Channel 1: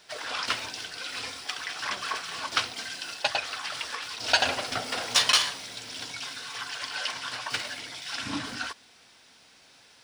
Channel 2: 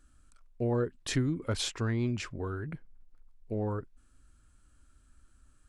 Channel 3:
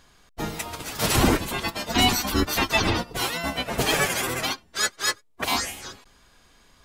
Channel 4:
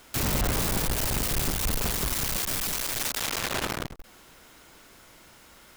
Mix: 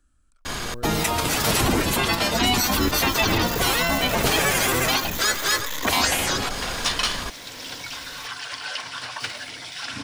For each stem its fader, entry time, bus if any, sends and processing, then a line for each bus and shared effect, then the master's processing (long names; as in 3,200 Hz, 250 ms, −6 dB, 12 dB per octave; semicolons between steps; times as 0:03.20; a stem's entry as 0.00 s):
−3.5 dB, 1.70 s, no send, no processing
−15.0 dB, 0.00 s, no send, no processing
−2.0 dB, 0.45 s, no send, downward expander −49 dBFS; envelope flattener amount 70%
−2.0 dB, 2.50 s, no send, downward compressor, threshold −31 dBFS, peak gain reduction 8 dB; EQ curve with evenly spaced ripples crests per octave 1.1, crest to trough 16 dB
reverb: not used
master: multiband upward and downward compressor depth 40%